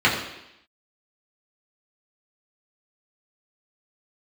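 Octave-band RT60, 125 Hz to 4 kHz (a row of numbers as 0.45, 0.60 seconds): 0.70, 0.85, 0.80, 0.85, 0.90, 0.90 seconds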